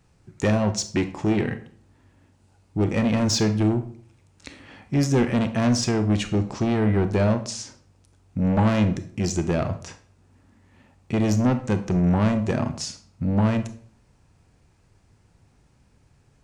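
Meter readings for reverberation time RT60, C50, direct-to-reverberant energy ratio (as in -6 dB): 0.50 s, 12.5 dB, 9.0 dB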